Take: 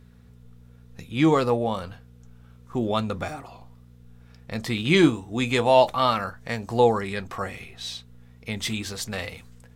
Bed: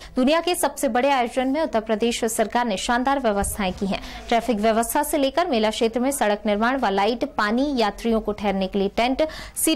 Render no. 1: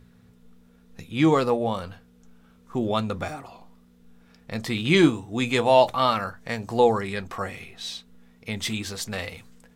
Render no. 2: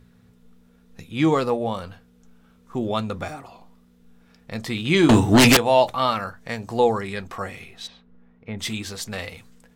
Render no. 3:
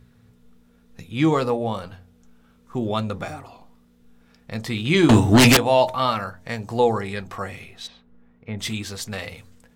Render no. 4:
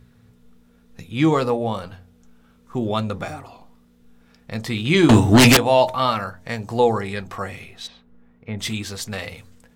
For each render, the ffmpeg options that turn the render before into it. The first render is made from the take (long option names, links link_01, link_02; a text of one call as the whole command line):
ffmpeg -i in.wav -af "bandreject=frequency=60:width_type=h:width=4,bandreject=frequency=120:width_type=h:width=4" out.wav
ffmpeg -i in.wav -filter_complex "[0:a]asettb=1/sr,asplit=3[link_01][link_02][link_03];[link_01]atrim=end=5.094[link_04];[link_02]atrim=start=5.09:end=5.57,asetpts=PTS-STARTPTS,afade=type=in:duration=0.004:curve=qsin,afade=type=out:start_time=0.476:duration=0.004:curve=qsin,aeval=exprs='0.355*sin(PI/2*6.31*val(0)/0.355)':channel_layout=same[link_05];[link_03]atrim=start=5.566[link_06];[link_04][link_05]acrossfade=duration=0.004:curve1=hsin:curve2=qsin[link_07];[link_07][link_06]acrossfade=duration=0.004:curve1=qsin:curve2=hsin,asplit=3[link_08][link_09][link_10];[link_08]afade=type=out:start_time=7.86:duration=0.02[link_11];[link_09]lowpass=1600,afade=type=in:start_time=7.86:duration=0.02,afade=type=out:start_time=8.58:duration=0.02[link_12];[link_10]afade=type=in:start_time=8.58:duration=0.02[link_13];[link_11][link_12][link_13]amix=inputs=3:normalize=0" out.wav
ffmpeg -i in.wav -af "equalizer=frequency=110:width_type=o:width=1:gain=3.5,bandreject=frequency=90.67:width_type=h:width=4,bandreject=frequency=181.34:width_type=h:width=4,bandreject=frequency=272.01:width_type=h:width=4,bandreject=frequency=362.68:width_type=h:width=4,bandreject=frequency=453.35:width_type=h:width=4,bandreject=frequency=544.02:width_type=h:width=4,bandreject=frequency=634.69:width_type=h:width=4,bandreject=frequency=725.36:width_type=h:width=4,bandreject=frequency=816.03:width_type=h:width=4,bandreject=frequency=906.7:width_type=h:width=4" out.wav
ffmpeg -i in.wav -af "volume=1.5dB" out.wav